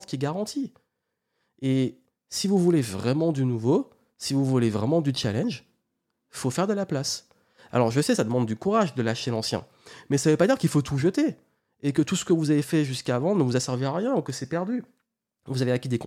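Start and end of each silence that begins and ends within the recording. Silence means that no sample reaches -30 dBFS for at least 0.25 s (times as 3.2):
0.66–1.63
1.9–2.33
3.82–4.22
5.56–6.36
7.17–7.74
9.59–10.11
11.31–11.84
14.8–15.48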